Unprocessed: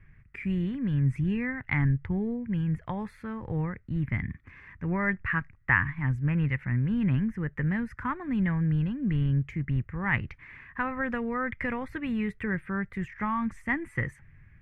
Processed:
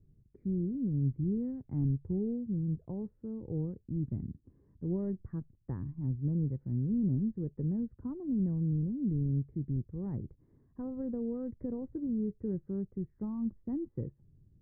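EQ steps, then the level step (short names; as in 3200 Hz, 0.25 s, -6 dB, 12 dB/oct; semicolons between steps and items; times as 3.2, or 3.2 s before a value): ladder low-pass 490 Hz, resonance 35%; air absorption 410 m; low shelf 120 Hz -7.5 dB; +4.5 dB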